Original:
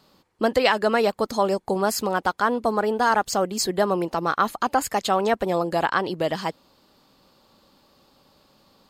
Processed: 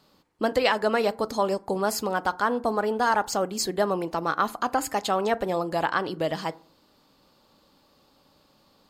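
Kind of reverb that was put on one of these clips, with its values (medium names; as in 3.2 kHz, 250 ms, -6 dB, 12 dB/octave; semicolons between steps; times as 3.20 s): FDN reverb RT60 0.45 s, low-frequency decay 1.3×, high-frequency decay 0.45×, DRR 14.5 dB; trim -3 dB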